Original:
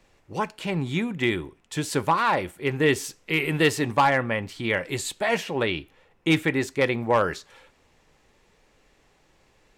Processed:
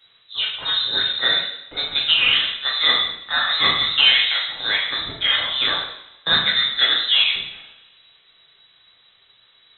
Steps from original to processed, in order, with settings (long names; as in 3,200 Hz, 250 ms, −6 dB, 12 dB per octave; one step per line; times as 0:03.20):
voice inversion scrambler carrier 3,900 Hz
coupled-rooms reverb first 0.74 s, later 2.2 s, from −25 dB, DRR −3.5 dB